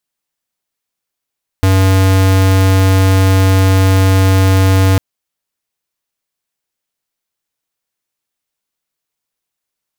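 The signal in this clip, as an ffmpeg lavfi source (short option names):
-f lavfi -i "aevalsrc='0.355*(2*lt(mod(95.3*t,1),0.5)-1)':d=3.35:s=44100"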